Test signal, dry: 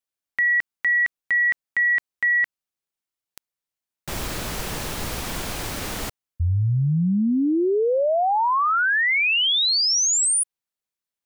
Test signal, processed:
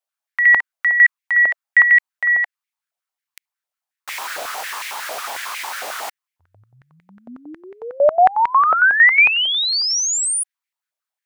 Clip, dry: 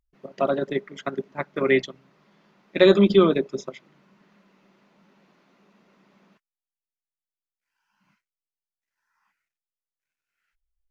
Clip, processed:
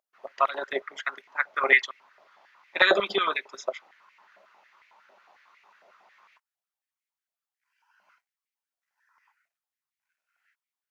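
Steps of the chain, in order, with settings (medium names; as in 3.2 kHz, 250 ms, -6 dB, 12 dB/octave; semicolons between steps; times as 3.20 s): step-sequenced high-pass 11 Hz 650–2100 Hz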